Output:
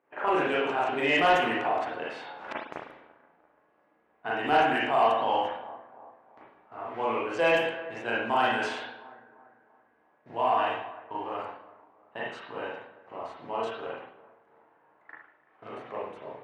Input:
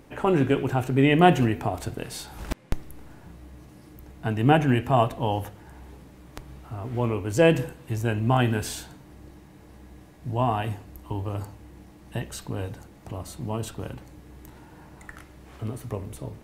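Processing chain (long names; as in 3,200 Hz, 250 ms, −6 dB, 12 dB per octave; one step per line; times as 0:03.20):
noise gate −40 dBFS, range −15 dB
low-pass that shuts in the quiet parts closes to 1,700 Hz, open at −15.5 dBFS
high-pass filter 640 Hz 12 dB per octave
high-shelf EQ 8,700 Hz −10 dB
on a send: bucket-brigade delay 340 ms, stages 4,096, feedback 42%, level −20.5 dB
on the sum: convolution reverb RT60 0.60 s, pre-delay 35 ms, DRR −6 dB
in parallel at −1 dB: brickwall limiter −18.5 dBFS, peak gain reduction 14 dB
on the sum: soft clipping −7.5 dBFS, distortion −20 dB
level −6 dB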